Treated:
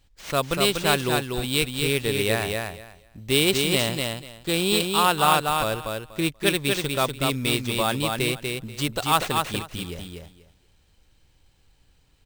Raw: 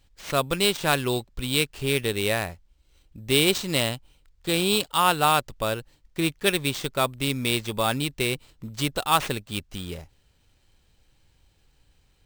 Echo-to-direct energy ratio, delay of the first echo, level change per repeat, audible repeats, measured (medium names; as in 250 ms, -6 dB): -4.0 dB, 242 ms, -15.0 dB, 3